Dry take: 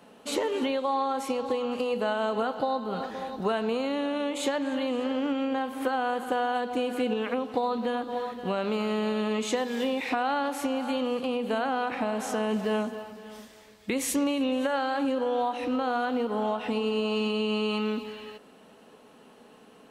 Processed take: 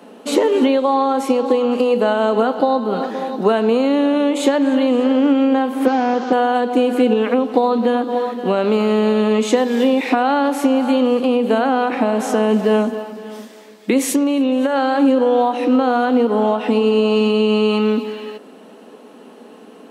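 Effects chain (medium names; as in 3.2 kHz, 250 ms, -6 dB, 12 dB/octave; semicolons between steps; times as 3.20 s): 5.86–6.33 s: one-bit delta coder 32 kbps, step -40.5 dBFS; high-pass 230 Hz 24 dB/octave; bass shelf 480 Hz +11 dB; 14.12–14.76 s: compression, threshold -21 dBFS, peak gain reduction 5.5 dB; trim +7.5 dB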